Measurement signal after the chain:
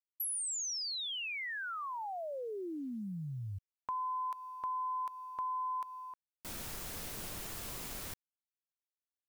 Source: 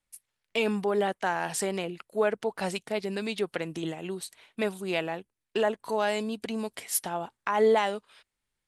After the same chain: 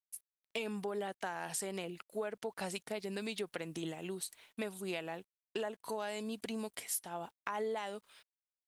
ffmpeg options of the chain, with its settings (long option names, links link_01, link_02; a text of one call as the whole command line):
ffmpeg -i in.wav -af "crystalizer=i=1:c=0,acrusher=bits=10:mix=0:aa=0.000001,acompressor=threshold=-29dB:ratio=6,volume=-6dB" out.wav